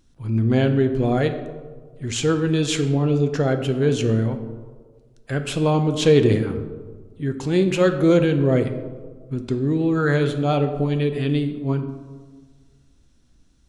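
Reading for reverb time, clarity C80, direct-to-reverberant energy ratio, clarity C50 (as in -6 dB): 1.6 s, 11.5 dB, 7.0 dB, 9.5 dB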